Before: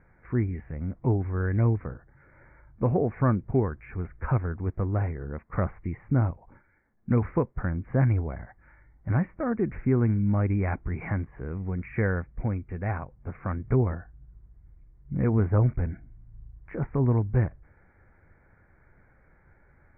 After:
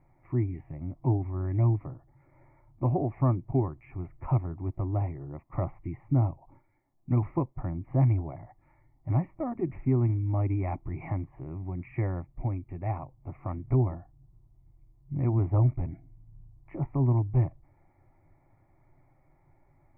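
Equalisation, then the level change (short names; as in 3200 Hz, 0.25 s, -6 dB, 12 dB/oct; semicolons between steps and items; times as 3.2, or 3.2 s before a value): fixed phaser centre 310 Hz, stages 8; 0.0 dB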